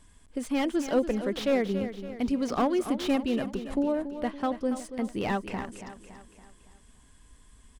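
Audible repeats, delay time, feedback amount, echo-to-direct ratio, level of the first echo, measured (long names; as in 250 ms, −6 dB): 4, 282 ms, 49%, −10.0 dB, −11.0 dB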